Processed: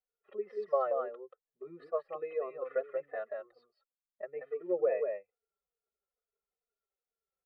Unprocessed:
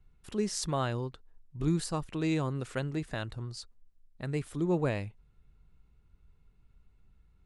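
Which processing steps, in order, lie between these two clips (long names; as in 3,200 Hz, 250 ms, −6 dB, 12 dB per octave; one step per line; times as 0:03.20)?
expanding power law on the bin magnitudes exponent 1.6
dynamic equaliser 730 Hz, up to −5 dB, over −49 dBFS, Q 1.5
elliptic band-pass filter 380–2,200 Hz, stop band 50 dB
parametric band 550 Hz +8 dB 0.8 octaves
comb filter 1.6 ms, depth 97%
single-tap delay 182 ms −5.5 dB
barber-pole flanger 3.4 ms −2.3 Hz
level +1.5 dB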